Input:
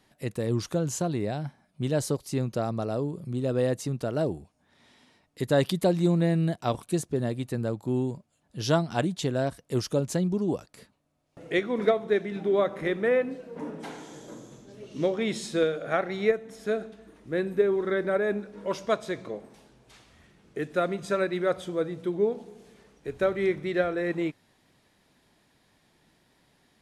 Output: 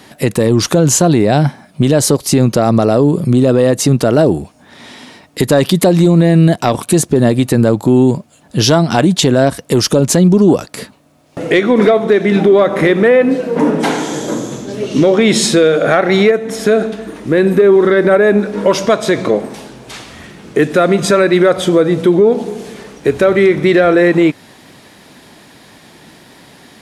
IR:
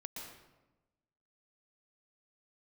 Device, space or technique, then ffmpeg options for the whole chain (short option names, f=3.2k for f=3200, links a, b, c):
mastering chain: -af "highpass=f=120:p=1,equalizer=f=260:t=o:w=0.77:g=2,acompressor=threshold=-30dB:ratio=2,asoftclip=type=tanh:threshold=-17.5dB,asoftclip=type=hard:threshold=-21dB,alimiter=level_in=25.5dB:limit=-1dB:release=50:level=0:latency=1,volume=-1dB"